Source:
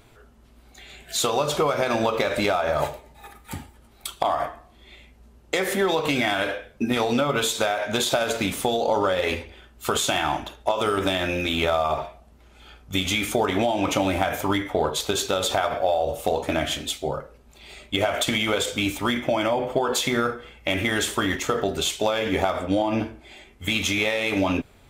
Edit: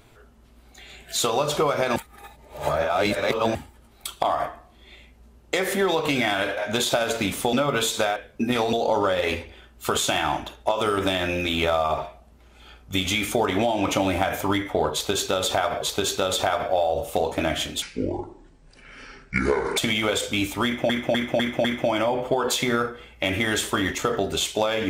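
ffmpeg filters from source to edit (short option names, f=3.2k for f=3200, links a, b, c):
-filter_complex "[0:a]asplit=14[a][b][c][d][e][f][g][h][i][j][k][l][m][n];[a]atrim=end=1.962[o];[b]atrim=start=1.958:end=3.552,asetpts=PTS-STARTPTS,areverse[p];[c]atrim=start=3.548:end=6.572[q];[d]atrim=start=7.768:end=8.732[r];[e]atrim=start=7.138:end=7.772[s];[f]atrim=start=6.568:end=7.142[t];[g]atrim=start=8.728:end=15.822[u];[h]atrim=start=14.928:end=16.934[v];[i]atrim=start=16.93:end=18.22,asetpts=PTS-STARTPTS,asetrate=29106,aresample=44100,atrim=end_sample=86195,asetpts=PTS-STARTPTS[w];[j]atrim=start=18.216:end=19.342[x];[k]atrim=start=19.088:end=19.342[y];[l]atrim=start=19.088:end=19.342[z];[m]atrim=start=19.088:end=19.342[aa];[n]atrim=start=19.088[ab];[o][p]acrossfade=d=0.004:c1=hsin:c2=hsin[ac];[ac][q]acrossfade=d=0.004:c1=hsin:c2=hsin[ad];[ad][r]acrossfade=d=0.004:c1=hsin:c2=hsin[ae];[ae][s]acrossfade=d=0.004:c1=hsin:c2=hsin[af];[af][t]acrossfade=d=0.004:c1=hsin:c2=hsin[ag];[ag][u]acrossfade=d=0.004:c1=hsin:c2=hsin[ah];[ah][v]acrossfade=d=0.004:c1=hsin:c2=hsin[ai];[ai][w]acrossfade=d=0.004:c1=hsin:c2=hsin[aj];[aj][x]acrossfade=d=0.004:c1=hsin:c2=hsin[ak];[ak][y]acrossfade=d=0.004:c1=hsin:c2=hsin[al];[al][z]acrossfade=d=0.004:c1=hsin:c2=hsin[am];[am][aa]acrossfade=d=0.004:c1=hsin:c2=hsin[an];[an][ab]acrossfade=d=0.004:c1=hsin:c2=hsin"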